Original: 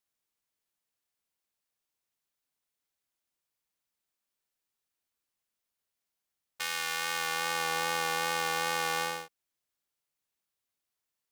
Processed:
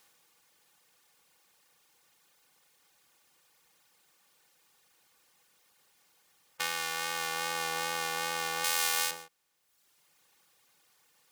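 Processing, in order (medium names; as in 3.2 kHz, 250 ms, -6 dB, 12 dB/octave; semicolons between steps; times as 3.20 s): spectral levelling over time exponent 0.6; reverb removal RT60 1.1 s; 8.64–9.11 s: tilt EQ +3 dB/octave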